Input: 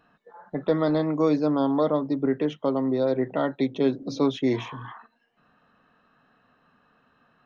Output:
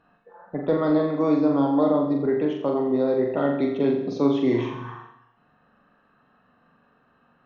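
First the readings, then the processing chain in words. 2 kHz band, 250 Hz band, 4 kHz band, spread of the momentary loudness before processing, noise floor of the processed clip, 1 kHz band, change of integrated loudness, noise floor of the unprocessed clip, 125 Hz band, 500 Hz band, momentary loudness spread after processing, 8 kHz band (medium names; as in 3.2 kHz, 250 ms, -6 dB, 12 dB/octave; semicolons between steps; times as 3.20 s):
+0.5 dB, +2.5 dB, -3.5 dB, 8 LU, -63 dBFS, +1.5 dB, +2.5 dB, -68 dBFS, +0.5 dB, +2.5 dB, 8 LU, no reading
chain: low-pass 2.1 kHz 6 dB/octave; flutter echo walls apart 7.3 m, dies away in 0.61 s; gated-style reverb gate 440 ms falling, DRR 11 dB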